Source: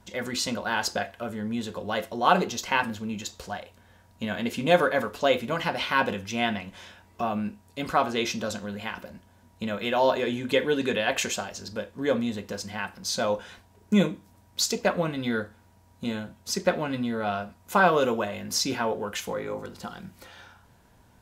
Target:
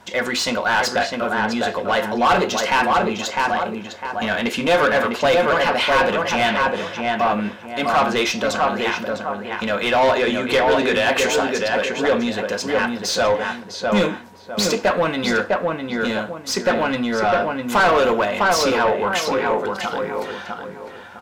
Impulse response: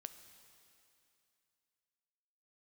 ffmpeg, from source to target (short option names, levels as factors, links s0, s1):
-filter_complex "[0:a]asplit=2[s0][s1];[s1]adelay=654,lowpass=f=1800:p=1,volume=0.631,asplit=2[s2][s3];[s3]adelay=654,lowpass=f=1800:p=1,volume=0.31,asplit=2[s4][s5];[s5]adelay=654,lowpass=f=1800:p=1,volume=0.31,asplit=2[s6][s7];[s7]adelay=654,lowpass=f=1800:p=1,volume=0.31[s8];[s0][s2][s4][s6][s8]amix=inputs=5:normalize=0,asplit=2[s9][s10];[s10]highpass=f=720:p=1,volume=17.8,asoftclip=type=tanh:threshold=0.631[s11];[s9][s11]amix=inputs=2:normalize=0,lowpass=f=2900:p=1,volume=0.501,volume=0.708"